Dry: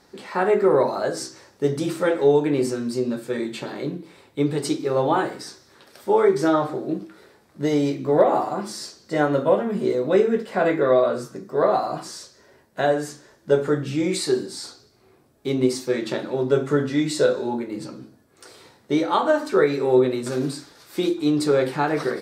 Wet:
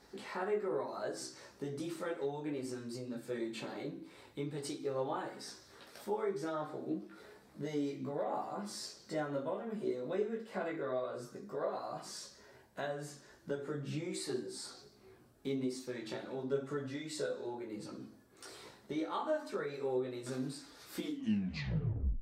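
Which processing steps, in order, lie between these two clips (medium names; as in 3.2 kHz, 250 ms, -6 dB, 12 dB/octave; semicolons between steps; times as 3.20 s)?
tape stop on the ending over 1.26 s; compression 2:1, threshold -40 dBFS, peak gain reduction 15.5 dB; chorus voices 6, 0.58 Hz, delay 17 ms, depth 2.7 ms; Schroeder reverb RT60 0.41 s, combs from 32 ms, DRR 15 dB; trim -2 dB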